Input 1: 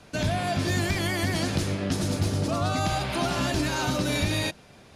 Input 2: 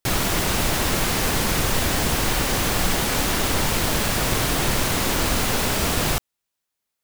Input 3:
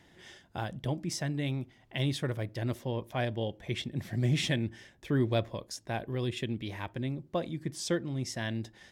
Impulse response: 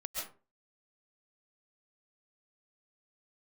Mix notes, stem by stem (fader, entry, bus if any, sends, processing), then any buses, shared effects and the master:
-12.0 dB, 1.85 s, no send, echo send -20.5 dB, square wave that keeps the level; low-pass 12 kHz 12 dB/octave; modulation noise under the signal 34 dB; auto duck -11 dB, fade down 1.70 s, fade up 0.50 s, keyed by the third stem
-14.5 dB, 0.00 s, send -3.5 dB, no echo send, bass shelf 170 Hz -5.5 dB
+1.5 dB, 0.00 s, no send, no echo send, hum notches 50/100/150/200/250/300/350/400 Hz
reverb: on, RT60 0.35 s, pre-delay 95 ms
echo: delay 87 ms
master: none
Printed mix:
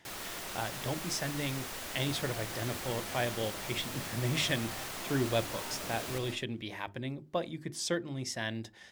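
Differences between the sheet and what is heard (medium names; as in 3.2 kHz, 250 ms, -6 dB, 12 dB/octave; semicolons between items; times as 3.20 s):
stem 2 -14.5 dB -> -21.0 dB; master: extra bass shelf 310 Hz -7.5 dB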